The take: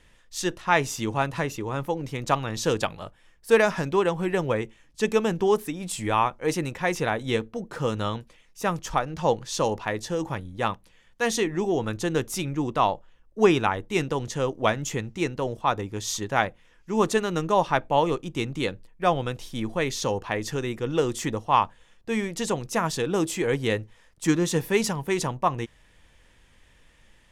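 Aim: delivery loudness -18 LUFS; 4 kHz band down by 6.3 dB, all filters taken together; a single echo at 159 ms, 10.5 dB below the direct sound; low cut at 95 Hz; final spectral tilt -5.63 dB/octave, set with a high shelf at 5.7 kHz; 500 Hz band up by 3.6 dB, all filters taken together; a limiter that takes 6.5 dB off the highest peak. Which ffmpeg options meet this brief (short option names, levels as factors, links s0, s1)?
-af "highpass=95,equalizer=f=500:t=o:g=4.5,equalizer=f=4000:t=o:g=-6,highshelf=f=5700:g=-7,alimiter=limit=0.282:level=0:latency=1,aecho=1:1:159:0.299,volume=2.37"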